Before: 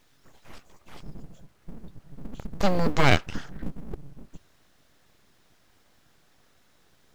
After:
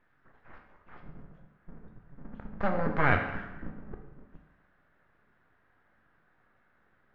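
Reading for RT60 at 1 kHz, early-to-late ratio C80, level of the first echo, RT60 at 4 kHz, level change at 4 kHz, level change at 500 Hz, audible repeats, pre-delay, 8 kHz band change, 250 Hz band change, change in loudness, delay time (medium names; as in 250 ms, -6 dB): 0.95 s, 9.0 dB, no echo, 0.85 s, -17.5 dB, -5.0 dB, no echo, 14 ms, under -30 dB, -6.0 dB, -4.0 dB, no echo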